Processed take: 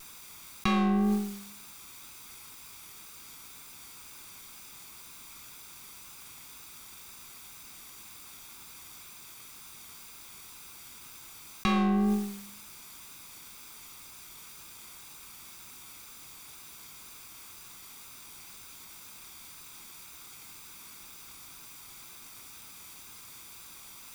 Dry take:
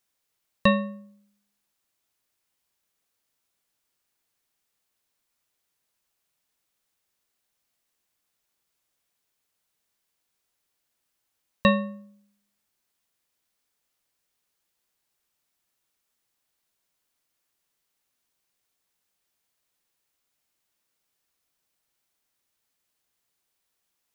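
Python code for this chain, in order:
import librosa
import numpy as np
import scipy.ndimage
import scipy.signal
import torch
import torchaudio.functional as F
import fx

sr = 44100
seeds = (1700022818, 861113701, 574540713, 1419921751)

y = fx.lower_of_two(x, sr, delay_ms=0.84)
y = fx.vibrato(y, sr, rate_hz=2.0, depth_cents=28.0)
y = fx.env_flatten(y, sr, amount_pct=100)
y = y * 10.0 ** (-8.0 / 20.0)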